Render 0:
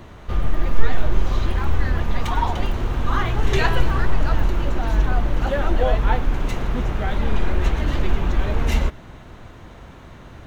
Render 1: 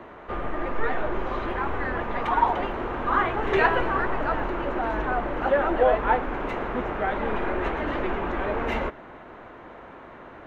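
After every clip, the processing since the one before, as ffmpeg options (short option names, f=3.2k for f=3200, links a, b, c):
-filter_complex "[0:a]acrossover=split=270 2400:gain=0.112 1 0.0631[a][b][c];[a][b][c]amix=inputs=3:normalize=0,volume=3.5dB"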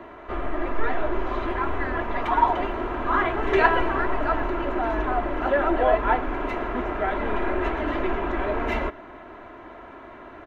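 -af "aecho=1:1:3:0.5"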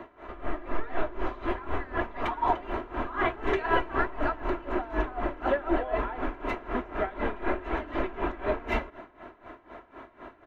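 -af "aeval=exprs='val(0)*pow(10,-18*(0.5-0.5*cos(2*PI*4*n/s))/20)':c=same"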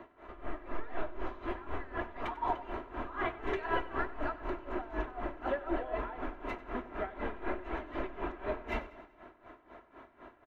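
-af "aecho=1:1:95|190|285|380|475:0.133|0.0707|0.0375|0.0199|0.0105,volume=-7.5dB"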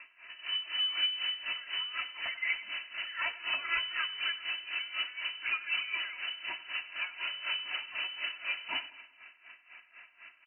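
-af "lowpass=f=2.6k:t=q:w=0.5098,lowpass=f=2.6k:t=q:w=0.6013,lowpass=f=2.6k:t=q:w=0.9,lowpass=f=2.6k:t=q:w=2.563,afreqshift=-3000"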